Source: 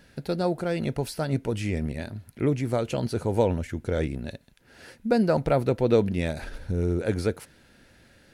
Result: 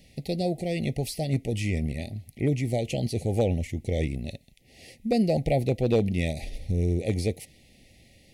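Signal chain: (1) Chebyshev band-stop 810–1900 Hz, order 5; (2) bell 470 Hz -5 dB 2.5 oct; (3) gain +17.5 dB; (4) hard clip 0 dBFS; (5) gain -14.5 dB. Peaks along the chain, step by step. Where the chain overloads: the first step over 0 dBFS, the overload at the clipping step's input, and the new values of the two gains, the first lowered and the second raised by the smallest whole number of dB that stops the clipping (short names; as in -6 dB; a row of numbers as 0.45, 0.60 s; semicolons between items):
-9.5, -12.5, +5.0, 0.0, -14.5 dBFS; step 3, 5.0 dB; step 3 +12.5 dB, step 5 -9.5 dB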